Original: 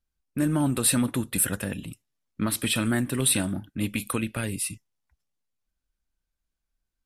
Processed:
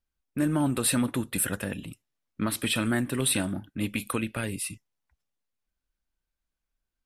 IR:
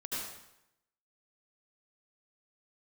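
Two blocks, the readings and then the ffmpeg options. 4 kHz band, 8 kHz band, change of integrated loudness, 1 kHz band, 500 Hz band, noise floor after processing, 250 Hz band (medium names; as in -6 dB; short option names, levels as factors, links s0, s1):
-1.5 dB, -4.0 dB, -2.5 dB, 0.0 dB, -0.5 dB, under -85 dBFS, -1.5 dB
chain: -af "bass=f=250:g=-3,treble=f=4000:g=-4"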